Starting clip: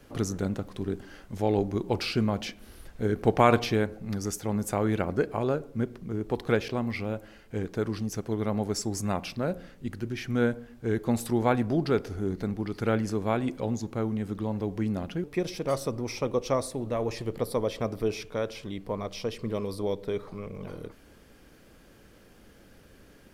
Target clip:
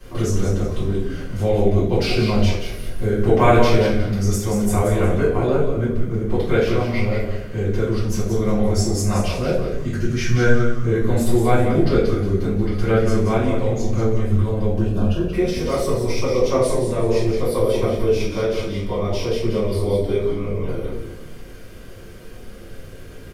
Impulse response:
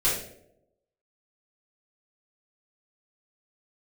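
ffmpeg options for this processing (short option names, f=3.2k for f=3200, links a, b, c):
-filter_complex "[0:a]asettb=1/sr,asplit=3[a][b][c];[a]atrim=end=9.724[d];[b]atrim=start=9.72:end=10.85,asetpts=PTS-STARTPTS,afade=t=in:d=0.004:c=qsin,afade=t=out:st=1.126:d=0.004:c=qsin,equalizer=f=160:t=o:w=0.67:g=10,equalizer=f=1.6k:t=o:w=0.67:g=6,equalizer=f=6.3k:t=o:w=0.67:g=11[e];[c]atrim=start=10.846[f];[d][e]acrossfade=d=0.004:c1=hsin:c2=qsin[g];[g][f]acrossfade=d=0.004:c1=qsin:c2=hsin,asplit=2[h][i];[i]acompressor=threshold=-39dB:ratio=6,volume=1.5dB[j];[h][j]amix=inputs=2:normalize=0,asettb=1/sr,asplit=3[k][l][m];[k]atrim=end=14.744[n];[l]atrim=start=14.74:end=15.25,asetpts=PTS-STARTPTS,afade=t=in:d=0.004:c=qsin,afade=t=out:st=0.506:d=0.004:c=qsin,asuperstop=centerf=2100:order=8:qfactor=3.4[o];[m]atrim=start=15.246[p];[n][o]acrossfade=d=0.004:c1=hsin:c2=qsin[q];[q][p]acrossfade=d=0.004:c1=qsin:c2=hsin,asplit=5[r][s][t][u][v];[s]adelay=180,afreqshift=-120,volume=-6.5dB[w];[t]adelay=360,afreqshift=-240,volume=-16.7dB[x];[u]adelay=540,afreqshift=-360,volume=-26.8dB[y];[v]adelay=720,afreqshift=-480,volume=-37dB[z];[r][w][x][y][z]amix=inputs=5:normalize=0[aa];[1:a]atrim=start_sample=2205[ab];[aa][ab]afir=irnorm=-1:irlink=0,volume=-7dB"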